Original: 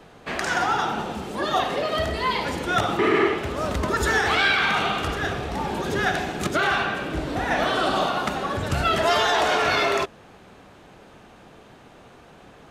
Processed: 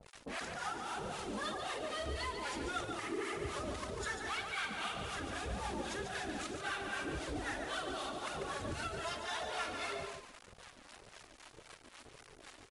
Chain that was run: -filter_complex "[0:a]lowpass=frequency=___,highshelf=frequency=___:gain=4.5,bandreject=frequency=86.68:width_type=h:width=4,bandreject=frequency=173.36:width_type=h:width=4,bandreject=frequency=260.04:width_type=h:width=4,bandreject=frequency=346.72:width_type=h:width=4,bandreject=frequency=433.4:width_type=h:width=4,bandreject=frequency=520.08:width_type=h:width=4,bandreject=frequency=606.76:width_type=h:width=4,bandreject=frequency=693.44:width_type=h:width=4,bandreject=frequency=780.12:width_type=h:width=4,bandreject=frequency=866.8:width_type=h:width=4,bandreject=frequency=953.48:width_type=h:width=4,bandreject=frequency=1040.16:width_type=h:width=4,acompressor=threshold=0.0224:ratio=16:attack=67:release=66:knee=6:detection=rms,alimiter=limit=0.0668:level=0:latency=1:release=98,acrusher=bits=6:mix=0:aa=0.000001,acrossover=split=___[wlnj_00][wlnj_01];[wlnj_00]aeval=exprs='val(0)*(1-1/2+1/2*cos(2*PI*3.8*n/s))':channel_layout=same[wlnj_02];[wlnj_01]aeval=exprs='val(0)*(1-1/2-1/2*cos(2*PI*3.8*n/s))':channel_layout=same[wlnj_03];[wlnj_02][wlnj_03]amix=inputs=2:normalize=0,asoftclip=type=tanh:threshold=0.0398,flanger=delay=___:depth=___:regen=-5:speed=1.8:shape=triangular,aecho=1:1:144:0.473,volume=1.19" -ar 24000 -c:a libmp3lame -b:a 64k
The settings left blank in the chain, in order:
8800, 5600, 680, 1.3, 2.6